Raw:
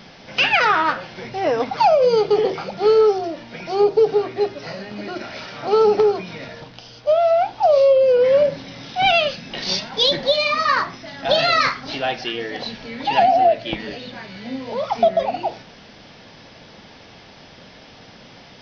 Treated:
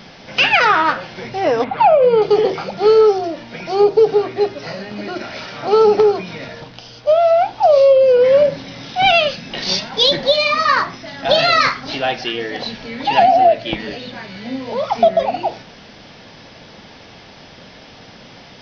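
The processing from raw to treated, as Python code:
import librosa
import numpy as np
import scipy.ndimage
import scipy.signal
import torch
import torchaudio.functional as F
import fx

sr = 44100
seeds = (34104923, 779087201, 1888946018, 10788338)

y = fx.lowpass(x, sr, hz=3000.0, slope=24, at=(1.64, 2.22))
y = y * librosa.db_to_amplitude(3.5)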